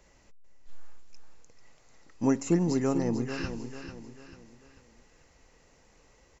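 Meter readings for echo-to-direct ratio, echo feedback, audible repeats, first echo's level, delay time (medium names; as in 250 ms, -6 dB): -8.5 dB, 40%, 4, -9.5 dB, 443 ms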